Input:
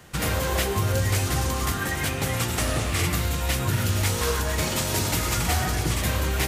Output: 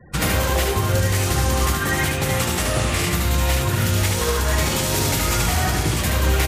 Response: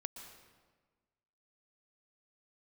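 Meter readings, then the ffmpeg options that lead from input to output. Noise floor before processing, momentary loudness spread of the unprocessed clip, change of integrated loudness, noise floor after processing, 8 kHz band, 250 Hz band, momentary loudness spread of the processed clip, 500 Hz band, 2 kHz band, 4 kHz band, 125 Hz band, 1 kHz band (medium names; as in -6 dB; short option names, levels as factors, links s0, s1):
-28 dBFS, 2 LU, +4.5 dB, -23 dBFS, +4.5 dB, +5.0 dB, 1 LU, +5.0 dB, +5.0 dB, +4.5 dB, +4.5 dB, +5.0 dB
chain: -filter_complex "[0:a]afftfilt=real='re*gte(hypot(re,im),0.00708)':imag='im*gte(hypot(re,im),0.00708)':win_size=1024:overlap=0.75,alimiter=limit=0.15:level=0:latency=1:release=258,asplit=2[s0][s1];[s1]aecho=0:1:74:0.668[s2];[s0][s2]amix=inputs=2:normalize=0,volume=1.88"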